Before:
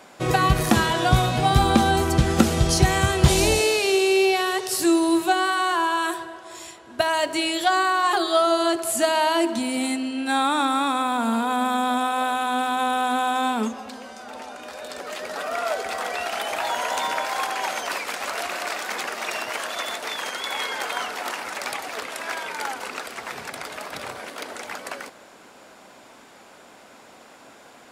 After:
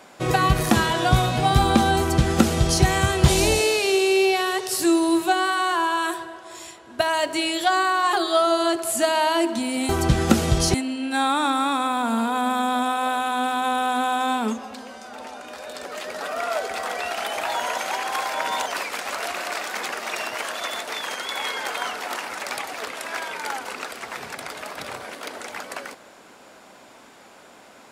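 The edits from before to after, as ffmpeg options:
ffmpeg -i in.wav -filter_complex "[0:a]asplit=5[link_01][link_02][link_03][link_04][link_05];[link_01]atrim=end=9.892[link_06];[link_02]atrim=start=1.978:end=2.832[link_07];[link_03]atrim=start=9.888:end=16.932[link_08];[link_04]atrim=start=16.928:end=17.812,asetpts=PTS-STARTPTS,areverse[link_09];[link_05]atrim=start=17.808[link_10];[link_06][link_07]acrossfade=duration=0.004:curve1=hsin:curve2=hsin[link_11];[link_11][link_08]acrossfade=duration=0.004:curve1=hsin:curve2=hsin[link_12];[link_12][link_09]acrossfade=duration=0.004:curve1=hsin:curve2=hsin[link_13];[link_13][link_10]acrossfade=duration=0.004:curve1=hsin:curve2=hsin" out.wav

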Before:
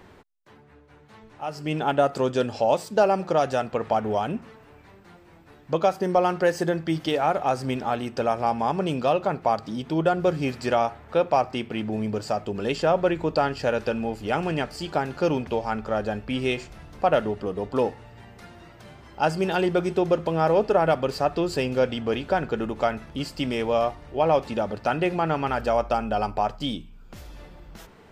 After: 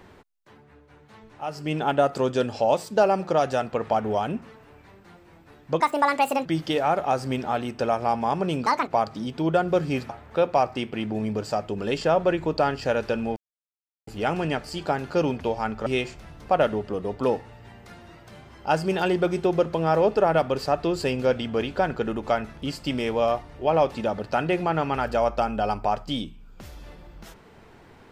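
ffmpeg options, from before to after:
ffmpeg -i in.wav -filter_complex "[0:a]asplit=8[link_01][link_02][link_03][link_04][link_05][link_06][link_07][link_08];[link_01]atrim=end=5.804[link_09];[link_02]atrim=start=5.8:end=6.83,asetpts=PTS-STARTPTS,asetrate=69678,aresample=44100[link_10];[link_03]atrim=start=6.826:end=9.044[link_11];[link_04]atrim=start=9.04:end=9.39,asetpts=PTS-STARTPTS,asetrate=73206,aresample=44100,atrim=end_sample=9298,asetpts=PTS-STARTPTS[link_12];[link_05]atrim=start=9.386:end=10.612[link_13];[link_06]atrim=start=10.868:end=14.14,asetpts=PTS-STARTPTS,afade=type=out:start_time=3.268:duration=0.004:curve=hsin,apad=pad_dur=0.71[link_14];[link_07]atrim=start=14.14:end=15.932,asetpts=PTS-STARTPTS,afade=type=in:duration=0.004:curve=hsin[link_15];[link_08]atrim=start=16.388[link_16];[link_09][link_10]acrossfade=duration=0.004:curve1=hsin:curve2=hsin[link_17];[link_17][link_11]acrossfade=duration=0.004:curve1=hsin:curve2=hsin[link_18];[link_18][link_12]acrossfade=duration=0.004:curve1=hsin:curve2=hsin[link_19];[link_19][link_13]acrossfade=duration=0.004:curve1=hsin:curve2=hsin[link_20];[link_14][link_15]concat=n=2:v=0:a=1[link_21];[link_20][link_21]acrossfade=duration=0.004:curve1=hsin:curve2=hsin[link_22];[link_22][link_16]acrossfade=duration=0.004:curve1=hsin:curve2=hsin" out.wav

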